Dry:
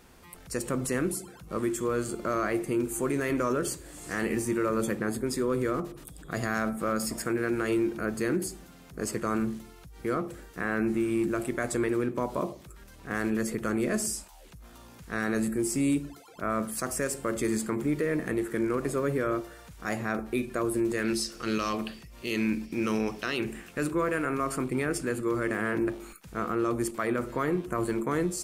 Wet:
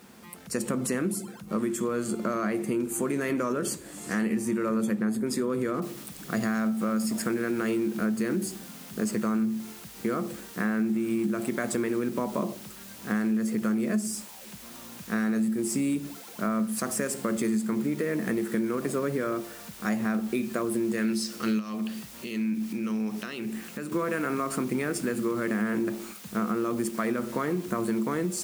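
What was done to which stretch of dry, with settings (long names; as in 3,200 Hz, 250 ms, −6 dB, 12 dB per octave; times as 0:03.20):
0:05.82: noise floor change −67 dB −50 dB
0:21.59–0:23.92: downward compressor 2.5 to 1, threshold −40 dBFS
whole clip: high-pass filter 130 Hz 12 dB per octave; parametric band 210 Hz +15 dB 0.22 octaves; downward compressor, threshold −27 dBFS; level +3 dB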